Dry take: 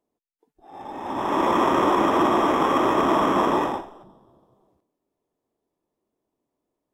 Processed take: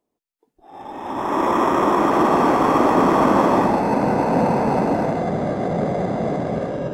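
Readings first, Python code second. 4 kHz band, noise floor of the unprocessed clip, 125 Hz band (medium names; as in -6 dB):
-1.5 dB, -83 dBFS, +13.0 dB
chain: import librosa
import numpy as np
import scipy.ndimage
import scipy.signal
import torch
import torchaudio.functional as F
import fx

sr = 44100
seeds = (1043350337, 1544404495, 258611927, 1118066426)

y = fx.echo_pitch(x, sr, ms=442, semitones=-4, count=3, db_per_echo=-3.0)
y = fx.dynamic_eq(y, sr, hz=3100.0, q=2.5, threshold_db=-46.0, ratio=4.0, max_db=-6)
y = F.gain(torch.from_numpy(y), 2.0).numpy()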